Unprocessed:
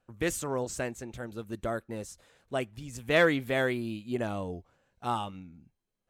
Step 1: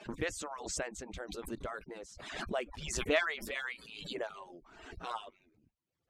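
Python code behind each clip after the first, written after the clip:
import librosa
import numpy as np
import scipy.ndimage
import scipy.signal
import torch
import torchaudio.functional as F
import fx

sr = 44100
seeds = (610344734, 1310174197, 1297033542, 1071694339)

y = fx.hpss_only(x, sr, part='percussive')
y = scipy.signal.sosfilt(scipy.signal.butter(2, 5900.0, 'lowpass', fs=sr, output='sos'), y)
y = fx.pre_swell(y, sr, db_per_s=50.0)
y = y * librosa.db_to_amplitude(-3.5)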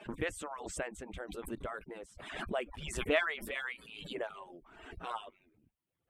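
y = fx.band_shelf(x, sr, hz=5300.0, db=-10.5, octaves=1.0)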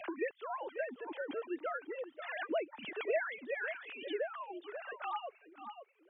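y = fx.sine_speech(x, sr)
y = y + 10.0 ** (-18.0 / 20.0) * np.pad(y, (int(538 * sr / 1000.0), 0))[:len(y)]
y = fx.band_squash(y, sr, depth_pct=70)
y = y * librosa.db_to_amplitude(1.5)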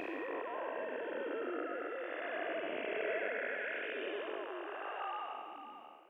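y = fx.spec_blur(x, sr, span_ms=455.0)
y = y * librosa.db_to_amplitude(9.5)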